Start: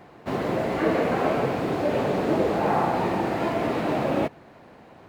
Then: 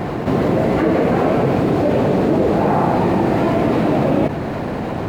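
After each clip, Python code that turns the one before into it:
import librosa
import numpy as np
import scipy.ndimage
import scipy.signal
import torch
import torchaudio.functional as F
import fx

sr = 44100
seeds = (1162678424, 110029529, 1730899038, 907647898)

y = fx.low_shelf(x, sr, hz=460.0, db=9.5)
y = fx.env_flatten(y, sr, amount_pct=70)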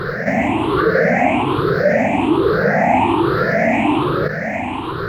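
y = fx.spec_ripple(x, sr, per_octave=0.61, drift_hz=1.2, depth_db=24)
y = fx.peak_eq(y, sr, hz=1900.0, db=12.0, octaves=1.7)
y = y * 10.0 ** (-7.5 / 20.0)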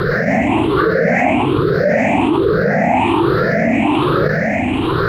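y = fx.rotary_switch(x, sr, hz=5.0, then_hz=1.0, switch_at_s=0.41)
y = fx.env_flatten(y, sr, amount_pct=70)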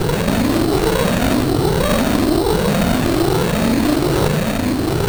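y = fx.sample_hold(x, sr, seeds[0], rate_hz=4400.0, jitter_pct=0)
y = fx.doubler(y, sr, ms=40.0, db=-11)
y = fx.running_max(y, sr, window=33)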